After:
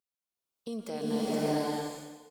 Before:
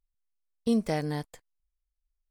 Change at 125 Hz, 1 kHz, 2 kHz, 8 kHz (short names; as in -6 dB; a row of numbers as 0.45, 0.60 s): -5.0, +3.0, -1.5, +5.5 dB